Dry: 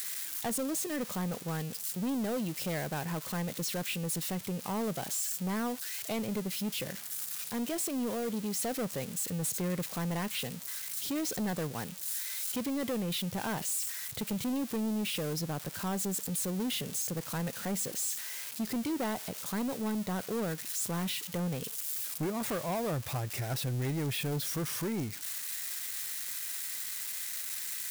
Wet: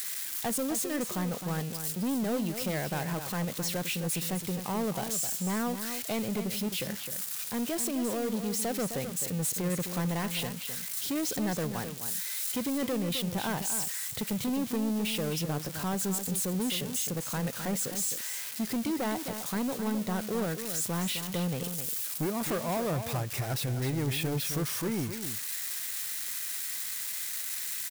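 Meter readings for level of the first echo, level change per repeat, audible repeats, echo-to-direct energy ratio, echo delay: -9.0 dB, no regular repeats, 1, -9.0 dB, 260 ms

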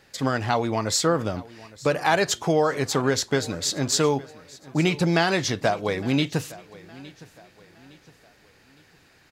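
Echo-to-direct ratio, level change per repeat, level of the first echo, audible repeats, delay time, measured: -20.0 dB, -8.0 dB, -20.5 dB, 2, 862 ms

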